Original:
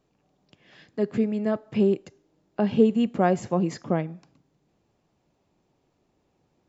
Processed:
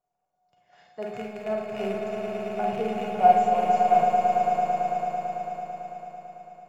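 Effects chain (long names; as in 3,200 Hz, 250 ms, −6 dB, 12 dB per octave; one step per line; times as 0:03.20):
loose part that buzzes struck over −27 dBFS, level −19 dBFS
noise gate −54 dBFS, range −6 dB
drawn EQ curve 170 Hz 0 dB, 270 Hz −7 dB, 710 Hz +14 dB, 3,600 Hz −2 dB, 7,200 Hz +7 dB
automatic gain control gain up to 5.5 dB
tuned comb filter 720 Hz, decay 0.25 s, mix 90%
echo that builds up and dies away 111 ms, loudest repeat 5, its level −7 dB
four-comb reverb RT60 0.51 s, combs from 33 ms, DRR 0.5 dB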